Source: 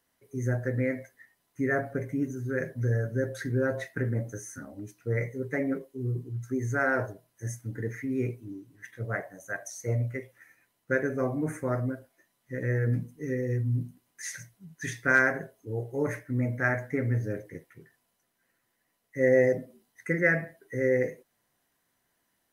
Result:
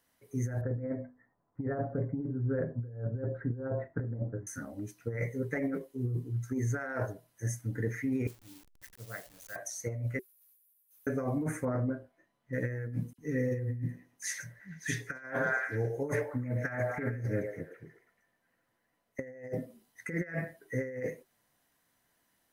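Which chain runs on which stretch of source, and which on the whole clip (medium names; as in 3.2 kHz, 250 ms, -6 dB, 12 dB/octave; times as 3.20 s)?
0.61–4.47 s: low-pass 1.2 kHz 24 dB/octave + bass shelf 120 Hz +5 dB + hum notches 50/100/150/200/250/300/350 Hz
8.27–9.56 s: send-on-delta sampling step -43.5 dBFS + pre-emphasis filter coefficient 0.8
10.19–11.07 s: inverse Chebyshev high-pass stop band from 2.4 kHz, stop band 80 dB + waveshaping leveller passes 3
11.65–12.53 s: low-pass 1.1 kHz 6 dB/octave + doubling 28 ms -9 dB
13.13–19.19 s: phase dispersion lows, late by 52 ms, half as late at 2.9 kHz + repeats whose band climbs or falls 109 ms, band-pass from 560 Hz, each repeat 0.7 oct, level -5 dB + tape noise reduction on one side only decoder only
whole clip: band-stop 380 Hz, Q 12; compressor with a negative ratio -30 dBFS, ratio -0.5; trim -2 dB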